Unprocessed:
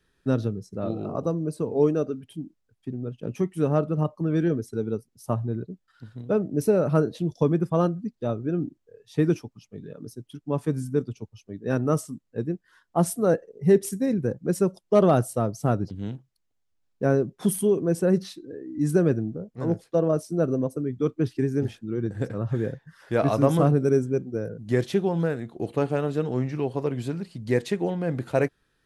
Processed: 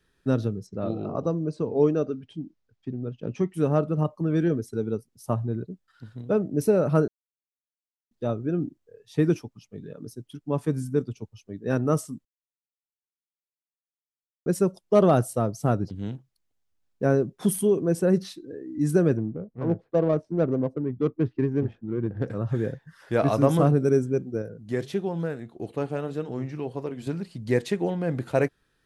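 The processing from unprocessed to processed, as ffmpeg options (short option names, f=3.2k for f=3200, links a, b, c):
-filter_complex "[0:a]asettb=1/sr,asplit=3[a][b][c];[a]atrim=end=0.674[d];[b]atrim=start=0.67:end=3.54,asetpts=PTS-STARTPTS,afade=t=in:d=0.004:c=qsin,afade=t=out:st=2.866:d=0.004:c=qsin,lowpass=f=6.2k:w=0.5412,lowpass=f=6.2k:w=1.3066[e];[c]atrim=start=3.536[f];[d][e]acrossfade=d=0.004:c1=hsin:c2=qsin[g];[g][f]acrossfade=d=0.004:c1=qsin:c2=hsin,asettb=1/sr,asplit=3[h][i][j];[h]atrim=end=19.174[k];[i]atrim=start=19.17:end=22.28,asetpts=PTS-STARTPTS,afade=t=in:d=0.004:c=qsin,afade=t=out:st=3.106:d=0.004:c=qsin,adynamicsmooth=sensitivity=2.5:basefreq=1.2k[l];[j]atrim=start=22.276[m];[k][l]acrossfade=d=0.004:c1=hsin:c2=qsin[n];[n][m]acrossfade=d=0.004:c1=qsin:c2=hsin,asettb=1/sr,asplit=3[o][p][q];[o]atrim=end=24.424[r];[p]atrim=start=24.42:end=27.07,asetpts=PTS-STARTPTS,afade=t=in:d=0.004:c=qsin,afade=t=out:st=2.646:d=0.004:c=qsin,flanger=delay=3:depth=1.3:regen=-89:speed=1.7:shape=sinusoidal[s];[q]atrim=start=27.066[t];[r][s]acrossfade=d=0.004:c1=hsin:c2=qsin[u];[u][t]acrossfade=d=0.004:c1=qsin:c2=hsin,asplit=5[v][w][x][y][z];[v]atrim=end=7.08,asetpts=PTS-STARTPTS,afade=t=out:st=7.076:d=0.004:c=hsin[aa];[w]atrim=start=7.08:end=8.11,asetpts=PTS-STARTPTS,volume=0[ab];[x]atrim=start=8.11:end=12.25,asetpts=PTS-STARTPTS,afade=t=in:d=0.004:c=hsin,afade=t=out:st=4.136:d=0.004:c=hsin[ac];[y]atrim=start=12.25:end=14.46,asetpts=PTS-STARTPTS,volume=0[ad];[z]atrim=start=14.46,asetpts=PTS-STARTPTS,afade=t=in:d=0.004:c=hsin[ae];[aa][ab][ac][ad][ae]concat=n=5:v=0:a=1"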